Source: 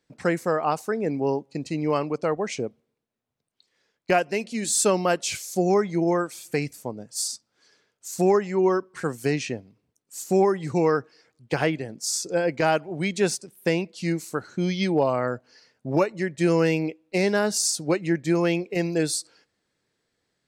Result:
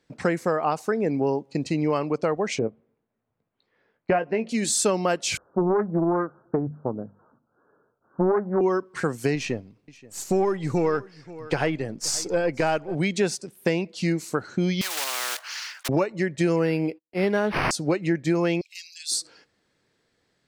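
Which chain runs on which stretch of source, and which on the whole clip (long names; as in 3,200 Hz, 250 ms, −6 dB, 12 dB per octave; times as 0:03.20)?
0:02.59–0:04.49: low-pass filter 1,800 Hz + double-tracking delay 18 ms −9.5 dB
0:05.37–0:08.61: Butterworth low-pass 1,500 Hz 96 dB per octave + mains-hum notches 50/100/150/200/250 Hz + highs frequency-modulated by the lows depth 0.42 ms
0:09.35–0:12.95: gain on one half-wave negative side −3 dB + single-tap delay 528 ms −23 dB
0:14.81–0:15.89: one scale factor per block 5 bits + high-pass filter 1,200 Hz 24 dB per octave + every bin compressed towards the loudest bin 4 to 1
0:16.56–0:17.71: noise gate −51 dBFS, range −38 dB + volume swells 101 ms + linearly interpolated sample-rate reduction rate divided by 6×
0:18.61–0:19.12: inverse Chebyshev high-pass filter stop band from 790 Hz, stop band 70 dB + upward compression, threshold −47 dBFS
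whole clip: high-shelf EQ 8,800 Hz −9.5 dB; downward compressor 2.5 to 1, threshold −28 dBFS; level +6 dB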